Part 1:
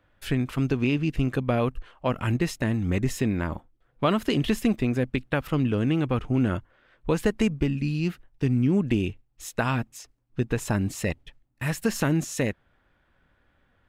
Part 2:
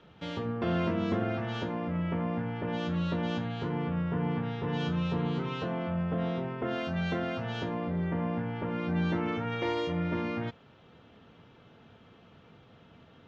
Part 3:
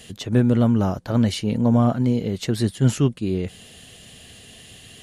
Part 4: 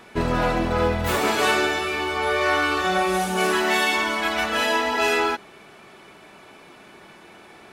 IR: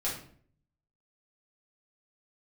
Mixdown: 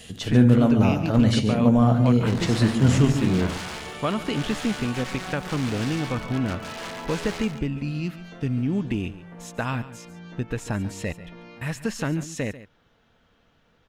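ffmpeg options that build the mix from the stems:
-filter_complex "[0:a]acontrast=84,volume=0.355,asplit=3[s0][s1][s2];[s1]volume=0.168[s3];[1:a]bass=f=250:g=-4,treble=f=4000:g=13,acompressor=threshold=0.0224:ratio=3,adelay=1200,volume=0.299,asplit=2[s4][s5];[s5]volume=0.299[s6];[2:a]volume=0.794,asplit=3[s7][s8][s9];[s8]volume=0.316[s10];[s9]volume=0.335[s11];[3:a]highshelf=f=2100:g=-9.5,aeval=exprs='(mod(7.5*val(0)+1,2)-1)/7.5':c=same,adelay=2100,volume=0.237,asplit=3[s12][s13][s14];[s13]volume=0.141[s15];[s14]volume=0.473[s16];[s2]apad=whole_len=638394[s17];[s4][s17]sidechaincompress=threshold=0.0316:ratio=8:attack=7.9:release=336[s18];[4:a]atrim=start_sample=2205[s19];[s6][s10][s15]amix=inputs=3:normalize=0[s20];[s20][s19]afir=irnorm=-1:irlink=0[s21];[s3][s11][s16]amix=inputs=3:normalize=0,aecho=0:1:141:1[s22];[s0][s18][s7][s12][s21][s22]amix=inputs=6:normalize=0,acrossover=split=9100[s23][s24];[s24]acompressor=threshold=0.00158:ratio=4:attack=1:release=60[s25];[s23][s25]amix=inputs=2:normalize=0,equalizer=f=370:t=o:w=0.21:g=-4.5"

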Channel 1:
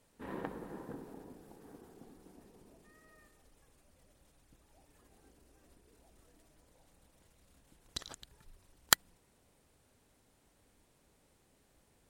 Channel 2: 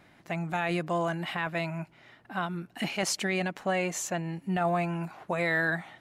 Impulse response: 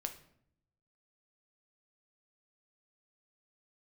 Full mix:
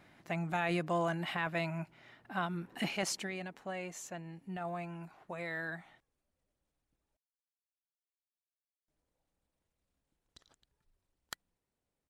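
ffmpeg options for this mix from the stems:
-filter_complex "[0:a]highshelf=f=9900:g=-10,adelay=2400,volume=0.126,asplit=3[s0][s1][s2];[s0]atrim=end=7.17,asetpts=PTS-STARTPTS,afade=t=out:st=7.166:d=0.004:c=hsin[s3];[s1]atrim=start=7.17:end=8.88,asetpts=PTS-STARTPTS,volume=0[s4];[s2]atrim=start=8.88,asetpts=PTS-STARTPTS,afade=t=in:d=0.004:c=hsin[s5];[s3][s4][s5]concat=n=3:v=0:a=1[s6];[1:a]volume=0.668,afade=t=out:st=2.89:d=0.46:silence=0.354813[s7];[s6][s7]amix=inputs=2:normalize=0"

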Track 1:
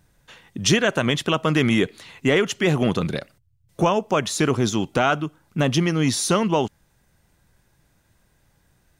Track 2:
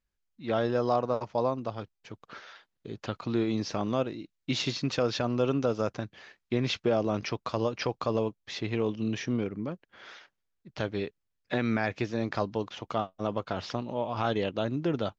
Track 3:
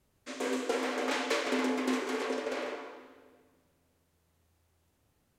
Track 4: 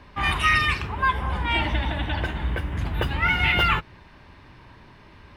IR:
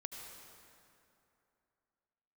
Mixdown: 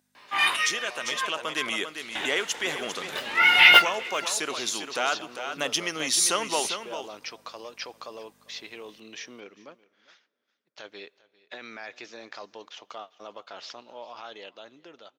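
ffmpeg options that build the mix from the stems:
-filter_complex "[0:a]aeval=exprs='val(0)+0.0141*(sin(2*PI*50*n/s)+sin(2*PI*2*50*n/s)/2+sin(2*PI*3*50*n/s)/3+sin(2*PI*4*50*n/s)/4+sin(2*PI*5*50*n/s)/5)':c=same,volume=0.15,asplit=4[s0][s1][s2][s3];[s1]volume=0.15[s4];[s2]volume=0.376[s5];[1:a]agate=range=0.224:threshold=0.00501:ratio=16:detection=peak,alimiter=limit=0.1:level=0:latency=1:release=21,volume=0.133,asplit=3[s6][s7][s8];[s7]volume=0.0944[s9];[s8]volume=0.0944[s10];[2:a]acompressor=threshold=0.0112:ratio=2,adelay=1850,volume=0.168[s11];[3:a]flanger=delay=17:depth=2.2:speed=2.2,adelay=150,volume=1.12,asplit=3[s12][s13][s14];[s12]atrim=end=1.27,asetpts=PTS-STARTPTS,afade=t=out:st=1.266:d=0.004:c=hsin[s15];[s13]atrim=start=1.27:end=2.15,asetpts=PTS-STARTPTS,volume=0[s16];[s14]atrim=start=2.15,asetpts=PTS-STARTPTS,afade=t=in:d=0.004:c=hsin[s17];[s15][s16][s17]concat=n=3:v=0:a=1,asplit=2[s18][s19];[s19]volume=0.0668[s20];[s3]apad=whole_len=243332[s21];[s18][s21]sidechaincompress=threshold=0.00316:ratio=8:attack=16:release=450[s22];[4:a]atrim=start_sample=2205[s23];[s4][s9]amix=inputs=2:normalize=0[s24];[s24][s23]afir=irnorm=-1:irlink=0[s25];[s5][s10][s20]amix=inputs=3:normalize=0,aecho=0:1:399:1[s26];[s0][s6][s11][s22][s25][s26]amix=inputs=6:normalize=0,highpass=480,highshelf=f=2100:g=10,dynaudnorm=f=270:g=11:m=2.99"

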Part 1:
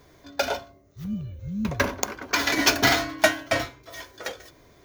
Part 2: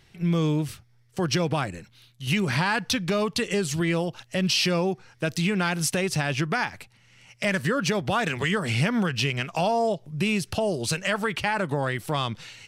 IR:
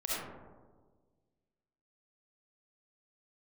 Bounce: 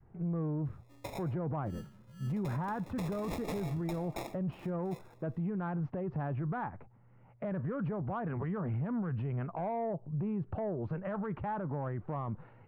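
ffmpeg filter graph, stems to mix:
-filter_complex "[0:a]highpass=190,acrusher=samples=29:mix=1:aa=0.000001,adelay=650,volume=0.15,asplit=2[s0][s1];[s1]volume=0.126[s2];[1:a]adynamicequalizer=threshold=0.0141:dfrequency=500:dqfactor=0.78:tfrequency=500:tqfactor=0.78:attack=5:release=100:ratio=0.375:range=2.5:mode=cutabove:tftype=bell,lowpass=f=1100:w=0.5412,lowpass=f=1100:w=1.3066,volume=0.944[s3];[2:a]atrim=start_sample=2205[s4];[s2][s4]afir=irnorm=-1:irlink=0[s5];[s0][s3][s5]amix=inputs=3:normalize=0,asoftclip=type=tanh:threshold=0.119,alimiter=level_in=1.88:limit=0.0631:level=0:latency=1:release=13,volume=0.531"

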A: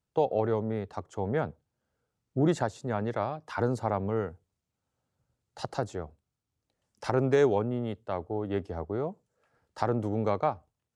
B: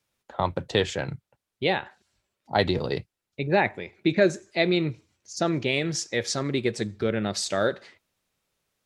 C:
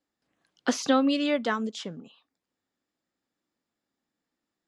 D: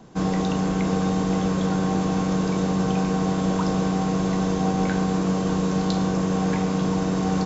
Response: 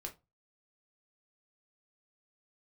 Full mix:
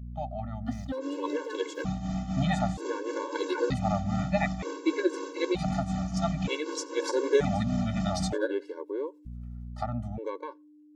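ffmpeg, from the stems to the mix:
-filter_complex "[0:a]volume=0.562[s0];[1:a]tremolo=f=11:d=0.88,adelay=800,volume=0.447[s1];[2:a]aeval=exprs='sgn(val(0))*max(abs(val(0))-0.00668,0)':c=same,tiltshelf=f=940:g=6,volume=0.266[s2];[3:a]tremolo=f=3.9:d=0.77,alimiter=limit=0.1:level=0:latency=1:release=42,adelay=850,volume=0.422[s3];[s0][s1][s2][s3]amix=inputs=4:normalize=0,dynaudnorm=f=280:g=13:m=2,aeval=exprs='val(0)+0.0126*(sin(2*PI*60*n/s)+sin(2*PI*2*60*n/s)/2+sin(2*PI*3*60*n/s)/3+sin(2*PI*4*60*n/s)/4+sin(2*PI*5*60*n/s)/5)':c=same,afftfilt=real='re*gt(sin(2*PI*0.54*pts/sr)*(1-2*mod(floor(b*sr/1024/290),2)),0)':imag='im*gt(sin(2*PI*0.54*pts/sr)*(1-2*mod(floor(b*sr/1024/290),2)),0)':win_size=1024:overlap=0.75"

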